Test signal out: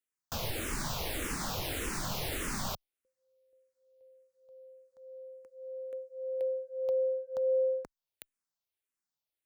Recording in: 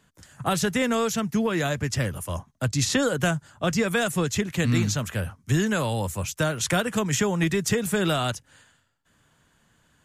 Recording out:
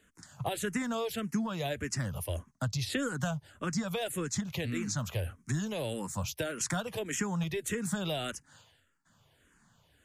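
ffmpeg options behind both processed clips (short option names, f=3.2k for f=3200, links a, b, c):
-filter_complex "[0:a]acompressor=threshold=-28dB:ratio=4,asplit=2[a][b];[b]afreqshift=-1.7[c];[a][c]amix=inputs=2:normalize=1"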